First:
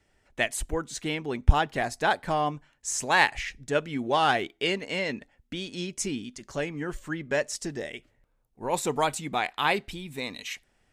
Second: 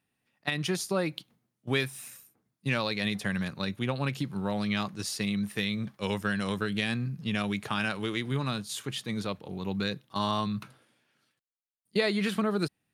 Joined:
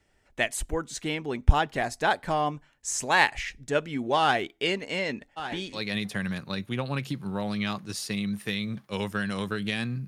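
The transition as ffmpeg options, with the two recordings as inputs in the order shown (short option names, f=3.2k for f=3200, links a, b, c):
-filter_complex "[0:a]asplit=3[a][b][c];[a]afade=t=out:st=5.36:d=0.02[d];[b]aecho=1:1:1156|2312|3468:0.251|0.0628|0.0157,afade=t=in:st=5.36:d=0.02,afade=t=out:st=5.8:d=0.02[e];[c]afade=t=in:st=5.8:d=0.02[f];[d][e][f]amix=inputs=3:normalize=0,apad=whole_dur=10.07,atrim=end=10.07,atrim=end=5.8,asetpts=PTS-STARTPTS[g];[1:a]atrim=start=2.82:end=7.17,asetpts=PTS-STARTPTS[h];[g][h]acrossfade=d=0.08:c1=tri:c2=tri"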